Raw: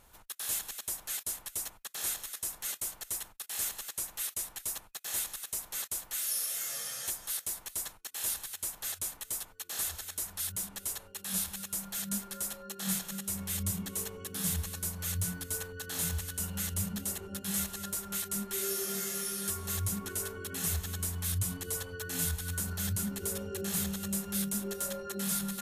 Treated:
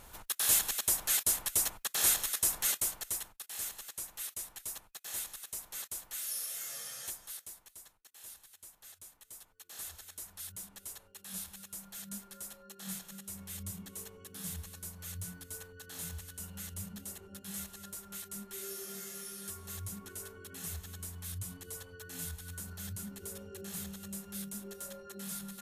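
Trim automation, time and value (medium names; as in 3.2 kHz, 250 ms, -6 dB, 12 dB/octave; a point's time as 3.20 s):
2.60 s +7 dB
3.51 s -5 dB
7.05 s -5 dB
7.81 s -16.5 dB
9.11 s -16.5 dB
9.90 s -9 dB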